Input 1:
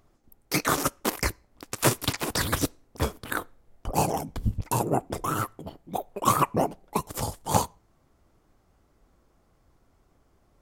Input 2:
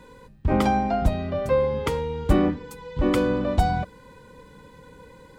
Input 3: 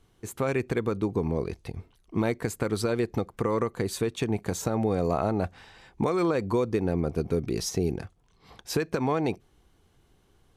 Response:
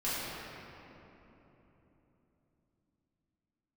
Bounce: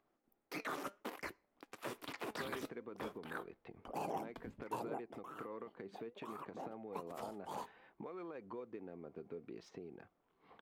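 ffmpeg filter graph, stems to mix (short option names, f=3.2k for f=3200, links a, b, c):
-filter_complex "[0:a]alimiter=limit=-18dB:level=0:latency=1:release=27,crystalizer=i=1.5:c=0,volume=0.5dB,afade=t=out:st=4.78:d=0.42:silence=0.298538,afade=t=in:st=6.36:d=0.61:silence=0.421697[a];[2:a]adynamicsmooth=sensitivity=4:basefreq=3.2k,adelay=2000,volume=-4dB,highshelf=f=5.9k:g=8,acompressor=threshold=-38dB:ratio=16,volume=0dB[b];[a][b]amix=inputs=2:normalize=0,acrossover=split=190 3300:gain=0.0891 1 0.0794[c][d][e];[c][d][e]amix=inputs=3:normalize=0,flanger=delay=1.2:depth=3.9:regen=86:speed=0.6:shape=sinusoidal"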